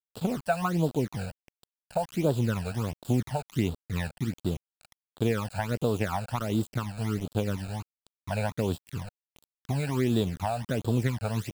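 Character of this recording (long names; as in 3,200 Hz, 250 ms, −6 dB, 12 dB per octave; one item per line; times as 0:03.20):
a quantiser's noise floor 6 bits, dither none
phaser sweep stages 12, 1.4 Hz, lowest notch 330–2,100 Hz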